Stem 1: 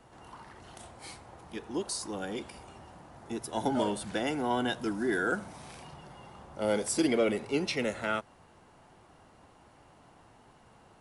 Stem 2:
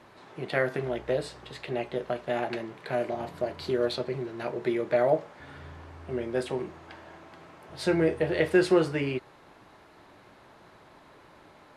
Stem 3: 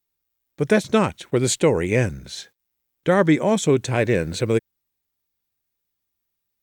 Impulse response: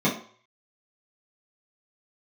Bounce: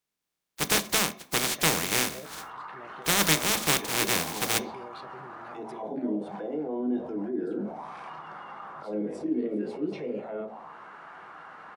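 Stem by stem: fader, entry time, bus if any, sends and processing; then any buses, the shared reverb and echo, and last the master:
−1.5 dB, 2.25 s, bus A, send −22 dB, envelope filter 320–1,500 Hz, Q 2.7, down, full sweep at −25 dBFS; envelope flattener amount 50%
−13.5 dB, 1.05 s, bus A, no send, no processing
−6.0 dB, 0.00 s, no bus, send −22 dB, compressing power law on the bin magnitudes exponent 0.12
bus A: 0.0 dB, brickwall limiter −34 dBFS, peak gain reduction 15 dB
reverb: on, RT60 0.50 s, pre-delay 3 ms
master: high-shelf EQ 8,900 Hz −5.5 dB

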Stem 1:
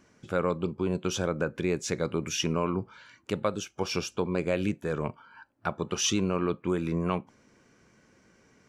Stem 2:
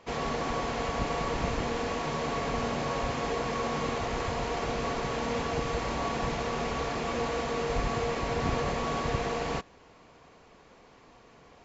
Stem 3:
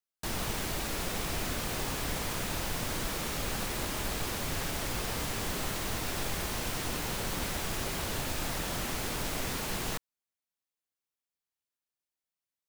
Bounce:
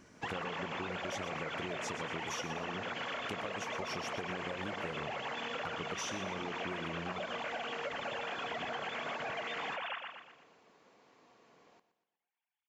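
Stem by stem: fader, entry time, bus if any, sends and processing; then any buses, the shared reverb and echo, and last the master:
+2.0 dB, 0.00 s, no send, echo send −11 dB, downward compressor, threshold −34 dBFS, peak gain reduction 12 dB
−8.0 dB, 0.15 s, no send, echo send −14 dB, high-pass filter 190 Hz 12 dB per octave
−2.0 dB, 0.00 s, no send, echo send −8 dB, three sine waves on the formant tracks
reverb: not used
echo: repeating echo 120 ms, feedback 44%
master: downward compressor, threshold −36 dBFS, peak gain reduction 9.5 dB

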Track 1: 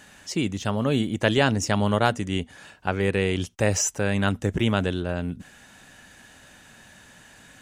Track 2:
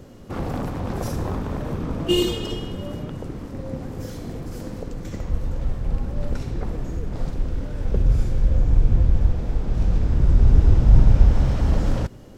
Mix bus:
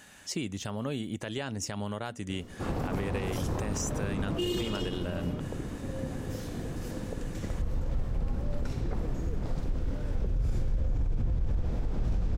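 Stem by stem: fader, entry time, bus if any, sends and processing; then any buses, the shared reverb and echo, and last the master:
−4.0 dB, 0.00 s, no send, high-shelf EQ 7,200 Hz +5 dB; downward compressor 10 to 1, threshold −25 dBFS, peak gain reduction 11.5 dB
−4.0 dB, 2.30 s, no send, brickwall limiter −11 dBFS, peak gain reduction 9.5 dB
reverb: not used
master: brickwall limiter −22 dBFS, peak gain reduction 9.5 dB

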